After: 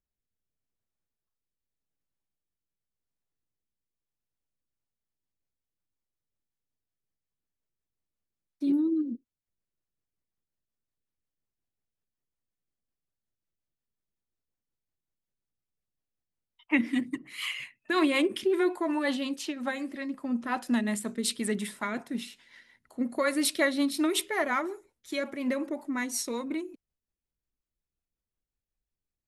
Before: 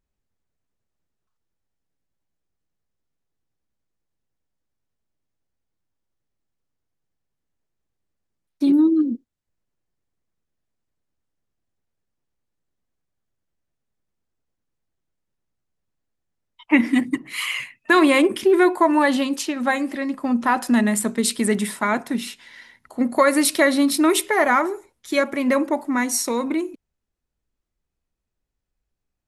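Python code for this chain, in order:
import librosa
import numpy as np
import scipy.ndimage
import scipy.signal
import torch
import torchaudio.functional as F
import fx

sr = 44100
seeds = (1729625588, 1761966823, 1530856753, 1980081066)

y = fx.rotary_switch(x, sr, hz=0.85, then_hz=5.5, switch_at_s=4.3)
y = fx.dynamic_eq(y, sr, hz=3400.0, q=1.3, threshold_db=-39.0, ratio=4.0, max_db=5)
y = y * 10.0 ** (-8.5 / 20.0)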